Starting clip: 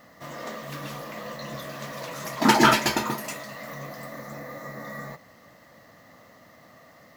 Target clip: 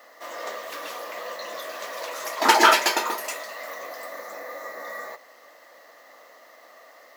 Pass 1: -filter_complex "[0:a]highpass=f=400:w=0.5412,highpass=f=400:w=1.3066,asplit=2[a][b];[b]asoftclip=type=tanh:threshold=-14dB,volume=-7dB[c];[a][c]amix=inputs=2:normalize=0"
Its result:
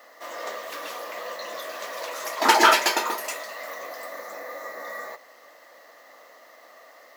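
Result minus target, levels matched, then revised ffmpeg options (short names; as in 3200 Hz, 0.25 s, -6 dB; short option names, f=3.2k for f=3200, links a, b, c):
soft clip: distortion +10 dB
-filter_complex "[0:a]highpass=f=400:w=0.5412,highpass=f=400:w=1.3066,asplit=2[a][b];[b]asoftclip=type=tanh:threshold=-7dB,volume=-7dB[c];[a][c]amix=inputs=2:normalize=0"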